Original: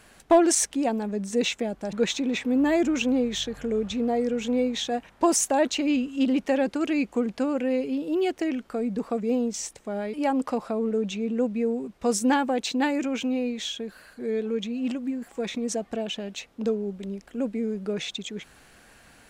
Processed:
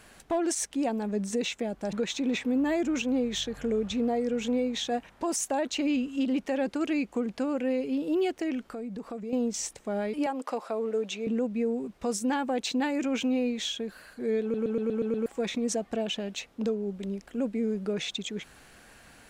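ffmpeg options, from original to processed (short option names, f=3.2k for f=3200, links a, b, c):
-filter_complex "[0:a]asettb=1/sr,asplit=3[a][b][c];[a]atrim=end=8.714[d];[b]atrim=start=8.71:end=9.33,asetpts=PTS-STARTPTS,afade=t=in:d=0.004:c=qsin,afade=t=out:st=0.616:d=0.004:c=qsin,acompressor=threshold=-38dB:ratio=2.5:attack=3.2:release=140:knee=1:detection=peak[e];[c]atrim=start=9.326[f];[d][e]acrossfade=d=0.004:c1=hsin:c2=qsin[g];[g][f]acrossfade=d=0.004:c1=qsin:c2=hsin,asettb=1/sr,asplit=3[h][i][j];[h]atrim=end=10.264[k];[i]atrim=start=10.26:end=11.27,asetpts=PTS-STARTPTS,afade=t=in:d=0.004:c=qsin,afade=t=out:st=1.006:d=0.004:c=qsin,highpass=380[l];[j]atrim=start=11.266[m];[k][l]acrossfade=d=0.004:c1=hsin:c2=qsin[n];[n][m]acrossfade=d=0.004:c1=qsin:c2=hsin,asplit=8[o][p][q][r][s][t][u][v];[o]atrim=end=14.542[w];[p]atrim=start=14.418:end=14.542[x];[q]atrim=start=14.418:end=14.542[y];[r]atrim=start=14.418:end=14.542[z];[s]atrim=start=14.418:end=14.542[aa];[t]atrim=start=14.418:end=14.542[ab];[u]atrim=start=14.418:end=14.542[ac];[v]atrim=start=15.258[ad];[w][x]acrossfade=d=0.004:c1=hsin:c2=hsin[ae];[ae][y]acrossfade=d=0.004:c1=hsin:c2=hsin[af];[af][z]acrossfade=d=0.004:c1=hsin:c2=hsin[ag];[ag][aa]acrossfade=d=0.004:c1=hsin:c2=hsin[ah];[ah][ab]acrossfade=d=0.004:c1=hsin:c2=hsin[ai];[ai][ac]acrossfade=d=0.004:c1=hsin:c2=hsin[aj];[aj][ad]acrossfade=d=0.004:c1=hsin:c2=hsin,alimiter=limit=-20.5dB:level=0:latency=1:release=320"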